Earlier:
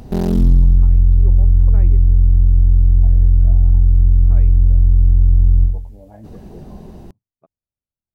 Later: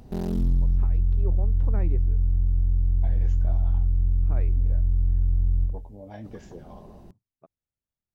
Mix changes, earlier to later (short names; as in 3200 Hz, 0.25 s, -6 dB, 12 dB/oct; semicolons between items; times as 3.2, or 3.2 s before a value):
second voice: remove LPF 1200 Hz 12 dB/oct; background -11.0 dB